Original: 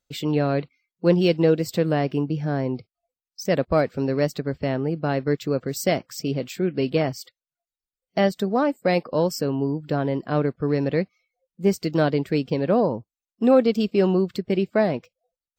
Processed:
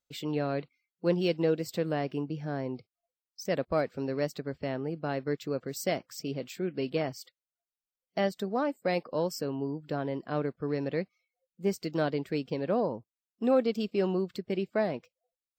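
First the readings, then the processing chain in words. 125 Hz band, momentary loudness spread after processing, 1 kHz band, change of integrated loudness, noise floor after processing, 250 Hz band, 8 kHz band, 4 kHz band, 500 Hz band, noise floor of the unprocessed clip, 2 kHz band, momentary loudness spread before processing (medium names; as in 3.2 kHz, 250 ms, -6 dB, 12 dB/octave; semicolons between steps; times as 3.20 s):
-11.0 dB, 8 LU, -8.0 dB, -8.5 dB, under -85 dBFS, -9.5 dB, -7.5 dB, -7.5 dB, -8.0 dB, under -85 dBFS, -7.5 dB, 8 LU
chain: bass shelf 160 Hz -6.5 dB; trim -7.5 dB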